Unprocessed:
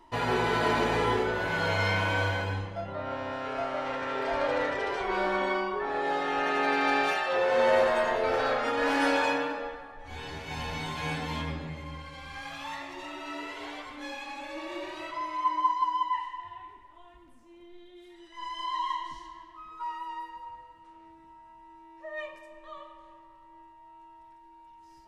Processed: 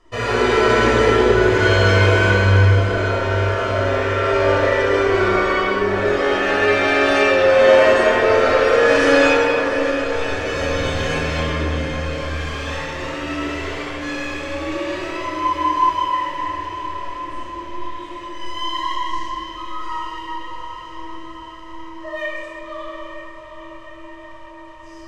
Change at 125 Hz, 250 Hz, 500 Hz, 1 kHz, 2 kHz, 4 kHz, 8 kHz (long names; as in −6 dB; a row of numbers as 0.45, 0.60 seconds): +17.5, +12.5, +14.0, +8.5, +12.0, +11.5, +13.0 decibels